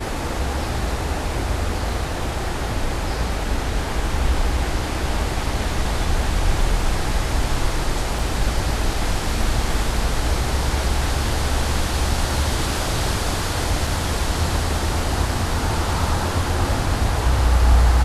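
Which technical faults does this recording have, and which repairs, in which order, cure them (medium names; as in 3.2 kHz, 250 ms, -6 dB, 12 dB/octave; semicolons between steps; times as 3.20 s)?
8.19 s: dropout 2.8 ms
13.87 s: dropout 3.1 ms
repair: interpolate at 8.19 s, 2.8 ms; interpolate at 13.87 s, 3.1 ms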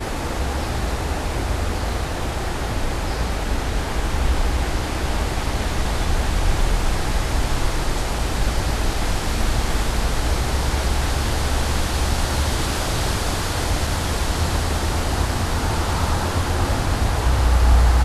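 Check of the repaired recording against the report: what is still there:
nothing left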